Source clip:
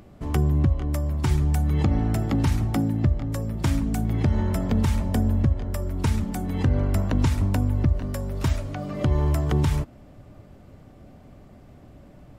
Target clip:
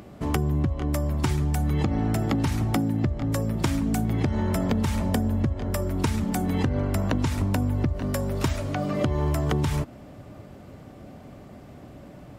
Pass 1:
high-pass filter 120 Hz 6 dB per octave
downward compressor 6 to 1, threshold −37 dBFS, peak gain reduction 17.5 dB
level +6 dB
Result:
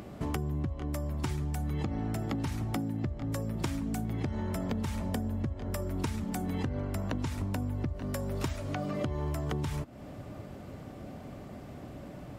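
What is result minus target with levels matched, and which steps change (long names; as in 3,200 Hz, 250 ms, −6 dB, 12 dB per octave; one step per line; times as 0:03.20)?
downward compressor: peak gain reduction +9 dB
change: downward compressor 6 to 1, threshold −26.5 dBFS, peak gain reduction 8.5 dB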